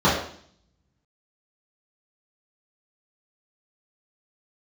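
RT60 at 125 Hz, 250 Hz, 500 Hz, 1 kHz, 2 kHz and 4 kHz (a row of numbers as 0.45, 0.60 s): 0.85, 0.75, 0.55, 0.55, 0.55, 0.65 s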